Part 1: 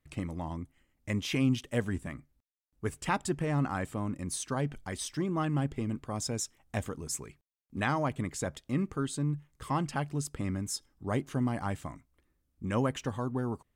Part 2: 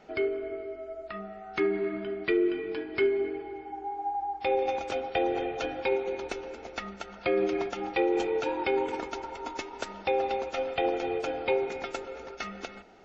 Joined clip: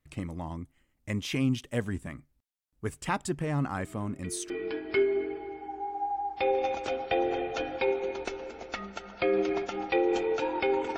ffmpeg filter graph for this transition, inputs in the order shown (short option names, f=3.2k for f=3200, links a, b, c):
-filter_complex "[1:a]asplit=2[a][b];[0:a]apad=whole_dur=10.97,atrim=end=10.97,atrim=end=4.502[c];[b]atrim=start=2.538:end=9.01[d];[a]atrim=start=1.82:end=2.54,asetpts=PTS-STARTPTS,volume=-18dB,afade=t=in:d=0.004:c=hsin,afade=t=out:st=0.716:d=0.004:c=hsin,adelay=3780[e];[c][d]acrossfade=d=0.004:c1=hsin:c2=hsin[f];[f][e]amix=inputs=2:normalize=0"